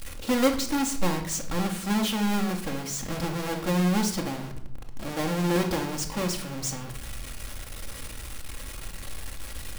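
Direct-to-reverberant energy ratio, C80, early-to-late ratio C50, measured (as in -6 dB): 2.5 dB, 13.5 dB, 10.0 dB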